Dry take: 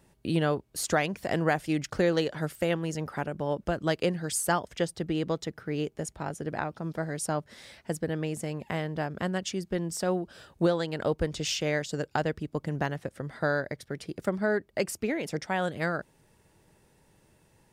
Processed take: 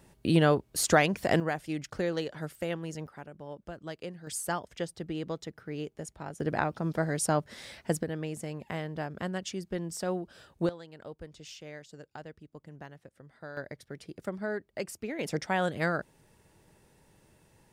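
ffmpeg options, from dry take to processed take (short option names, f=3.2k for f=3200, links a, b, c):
-af "asetnsamples=n=441:p=0,asendcmd='1.4 volume volume -6dB;3.07 volume volume -13dB;4.27 volume volume -6dB;6.4 volume volume 3dB;8.03 volume volume -4dB;10.69 volume volume -16.5dB;13.57 volume volume -7dB;15.19 volume volume 0.5dB',volume=3.5dB"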